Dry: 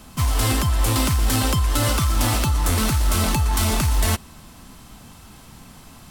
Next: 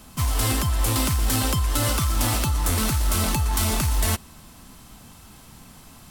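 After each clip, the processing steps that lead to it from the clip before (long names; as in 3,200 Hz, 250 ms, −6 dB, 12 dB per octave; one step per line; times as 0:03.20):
high-shelf EQ 7,500 Hz +4.5 dB
level −3 dB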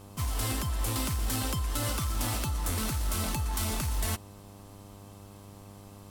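hum with harmonics 100 Hz, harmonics 12, −41 dBFS −5 dB per octave
level −8.5 dB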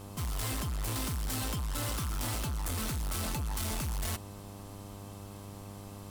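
soft clipping −35 dBFS, distortion −9 dB
level +3.5 dB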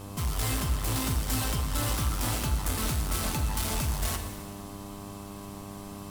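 dense smooth reverb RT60 1.8 s, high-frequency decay 0.9×, DRR 5 dB
level +4 dB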